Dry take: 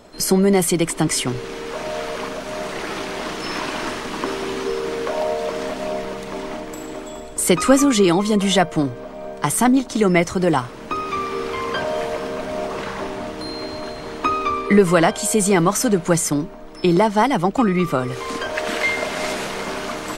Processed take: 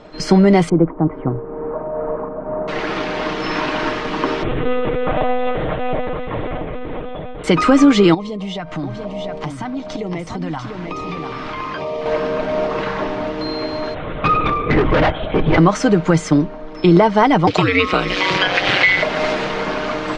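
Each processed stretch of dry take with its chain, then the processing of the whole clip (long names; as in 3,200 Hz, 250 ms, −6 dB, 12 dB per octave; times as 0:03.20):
0:00.69–0:02.68: low-pass filter 1,100 Hz 24 dB per octave + shaped tremolo triangle 2.3 Hz, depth 45%
0:04.43–0:07.44: high-frequency loss of the air 99 metres + double-tracking delay 20 ms −8 dB + one-pitch LPC vocoder at 8 kHz 250 Hz
0:08.14–0:12.06: auto-filter notch square 1.1 Hz 430–1,500 Hz + downward compressor, threshold −28 dBFS + single-tap delay 693 ms −5.5 dB
0:13.94–0:15.58: linear-prediction vocoder at 8 kHz whisper + hard clipping −16.5 dBFS
0:17.47–0:19.03: meter weighting curve D + ring modulation 94 Hz + multiband upward and downward compressor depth 100%
whole clip: Bessel low-pass filter 3,500 Hz, order 4; comb filter 6.5 ms, depth 37%; boost into a limiter +6.5 dB; level −1.5 dB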